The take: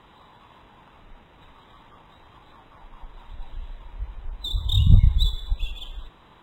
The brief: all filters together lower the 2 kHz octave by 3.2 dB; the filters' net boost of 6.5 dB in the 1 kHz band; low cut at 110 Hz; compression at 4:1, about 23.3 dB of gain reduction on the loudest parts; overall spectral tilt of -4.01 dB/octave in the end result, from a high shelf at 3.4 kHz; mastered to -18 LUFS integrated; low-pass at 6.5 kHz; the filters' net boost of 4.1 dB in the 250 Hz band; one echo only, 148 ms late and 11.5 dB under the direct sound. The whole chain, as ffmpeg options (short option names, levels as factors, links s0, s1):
-af "highpass=110,lowpass=6500,equalizer=f=250:t=o:g=8.5,equalizer=f=1000:t=o:g=8.5,equalizer=f=2000:t=o:g=-5,highshelf=f=3400:g=-5,acompressor=threshold=0.00794:ratio=4,aecho=1:1:148:0.266,volume=25.1"